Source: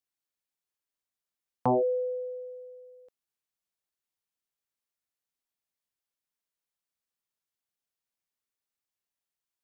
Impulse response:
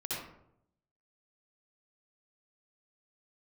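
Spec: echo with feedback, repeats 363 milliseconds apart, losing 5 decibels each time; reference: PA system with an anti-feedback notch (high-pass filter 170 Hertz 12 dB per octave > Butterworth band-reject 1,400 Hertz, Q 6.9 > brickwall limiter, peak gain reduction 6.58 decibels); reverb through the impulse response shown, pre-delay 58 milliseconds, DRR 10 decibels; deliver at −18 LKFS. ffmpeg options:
-filter_complex "[0:a]aecho=1:1:363|726|1089|1452|1815|2178|2541:0.562|0.315|0.176|0.0988|0.0553|0.031|0.0173,asplit=2[link_01][link_02];[1:a]atrim=start_sample=2205,adelay=58[link_03];[link_02][link_03]afir=irnorm=-1:irlink=0,volume=-13dB[link_04];[link_01][link_04]amix=inputs=2:normalize=0,highpass=170,asuperstop=centerf=1400:order=8:qfactor=6.9,volume=14.5dB,alimiter=limit=-8.5dB:level=0:latency=1"

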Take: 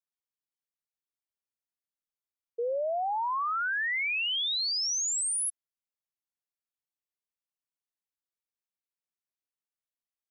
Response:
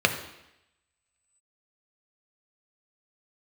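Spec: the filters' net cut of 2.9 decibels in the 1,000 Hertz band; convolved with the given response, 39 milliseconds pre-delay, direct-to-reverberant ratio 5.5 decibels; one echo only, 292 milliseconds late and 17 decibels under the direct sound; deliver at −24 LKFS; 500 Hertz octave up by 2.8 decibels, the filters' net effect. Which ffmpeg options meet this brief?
-filter_complex "[0:a]equalizer=frequency=500:width_type=o:gain=5,equalizer=frequency=1000:width_type=o:gain=-5.5,aecho=1:1:292:0.141,asplit=2[link_01][link_02];[1:a]atrim=start_sample=2205,adelay=39[link_03];[link_02][link_03]afir=irnorm=-1:irlink=0,volume=-21.5dB[link_04];[link_01][link_04]amix=inputs=2:normalize=0,volume=3.5dB"

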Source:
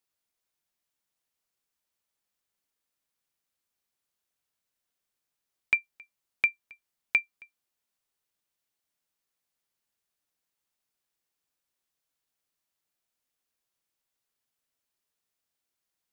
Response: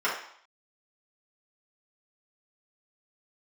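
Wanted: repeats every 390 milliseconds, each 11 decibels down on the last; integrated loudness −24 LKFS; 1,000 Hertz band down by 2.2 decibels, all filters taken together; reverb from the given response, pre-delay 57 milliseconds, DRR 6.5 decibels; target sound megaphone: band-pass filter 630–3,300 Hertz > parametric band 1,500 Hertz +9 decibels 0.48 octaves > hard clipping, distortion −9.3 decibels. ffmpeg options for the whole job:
-filter_complex "[0:a]equalizer=frequency=1000:width_type=o:gain=-8,aecho=1:1:390|780|1170:0.282|0.0789|0.0221,asplit=2[link_01][link_02];[1:a]atrim=start_sample=2205,adelay=57[link_03];[link_02][link_03]afir=irnorm=-1:irlink=0,volume=-19.5dB[link_04];[link_01][link_04]amix=inputs=2:normalize=0,highpass=630,lowpass=3300,equalizer=frequency=1500:width_type=o:width=0.48:gain=9,asoftclip=type=hard:threshold=-21.5dB,volume=10dB"

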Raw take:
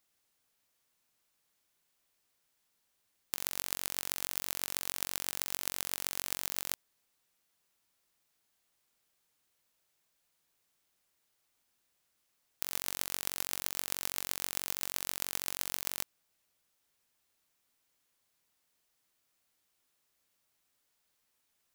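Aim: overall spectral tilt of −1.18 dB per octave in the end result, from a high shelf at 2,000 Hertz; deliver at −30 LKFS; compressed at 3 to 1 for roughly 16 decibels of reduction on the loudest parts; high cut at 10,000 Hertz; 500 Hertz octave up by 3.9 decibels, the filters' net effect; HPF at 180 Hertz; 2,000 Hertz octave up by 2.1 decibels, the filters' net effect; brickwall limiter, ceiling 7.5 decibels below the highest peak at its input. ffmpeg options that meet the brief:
ffmpeg -i in.wav -af "highpass=180,lowpass=10000,equalizer=frequency=500:width_type=o:gain=5,highshelf=frequency=2000:gain=-3.5,equalizer=frequency=2000:width_type=o:gain=4.5,acompressor=threshold=-55dB:ratio=3,volume=28.5dB,alimiter=limit=-4.5dB:level=0:latency=1" out.wav

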